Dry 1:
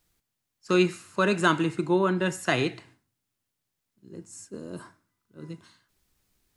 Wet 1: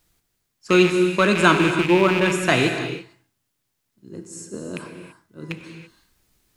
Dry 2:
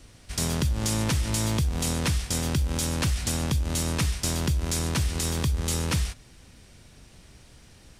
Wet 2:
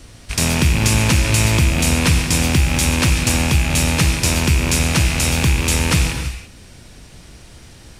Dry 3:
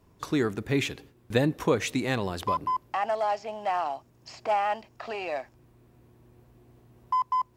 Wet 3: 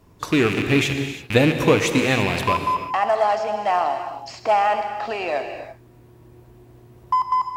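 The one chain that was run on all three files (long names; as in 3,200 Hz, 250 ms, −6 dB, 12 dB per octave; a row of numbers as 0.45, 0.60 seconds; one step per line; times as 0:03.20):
loose part that buzzes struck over −36 dBFS, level −21 dBFS
reverb whose tail is shaped and stops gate 360 ms flat, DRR 6 dB
normalise the peak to −1.5 dBFS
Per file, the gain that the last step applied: +6.0, +9.0, +7.0 decibels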